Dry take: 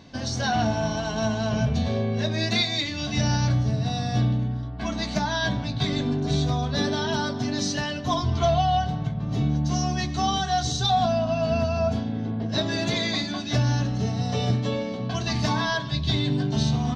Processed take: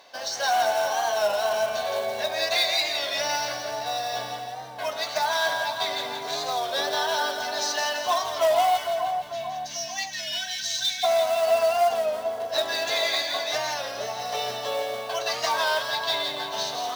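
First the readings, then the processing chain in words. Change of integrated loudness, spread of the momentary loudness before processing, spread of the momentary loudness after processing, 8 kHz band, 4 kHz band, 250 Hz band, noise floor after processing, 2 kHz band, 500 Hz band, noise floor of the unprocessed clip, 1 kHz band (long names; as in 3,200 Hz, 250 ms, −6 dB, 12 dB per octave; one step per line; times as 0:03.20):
−0.5 dB, 5 LU, 8 LU, +3.0 dB, +2.5 dB, −21.0 dB, −35 dBFS, +3.0 dB, +3.5 dB, −31 dBFS, +2.0 dB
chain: high-pass filter 180 Hz 6 dB per octave
low shelf with overshoot 390 Hz −14 dB, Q 1.5
delay with a band-pass on its return 80 ms, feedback 72%, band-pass 1,000 Hz, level −14 dB
in parallel at +1 dB: hard clipping −21.5 dBFS, distortion −12 dB
on the sum: time-frequency box erased 0:08.77–0:11.04, 290–1,500 Hz
floating-point word with a short mantissa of 2 bits
bass and treble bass −13 dB, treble 0 dB
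on a send: echo with a time of its own for lows and highs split 1,200 Hz, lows 445 ms, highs 169 ms, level −6 dB
on the sum: wow of a warped record 33 1/3 rpm, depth 100 cents
level −5 dB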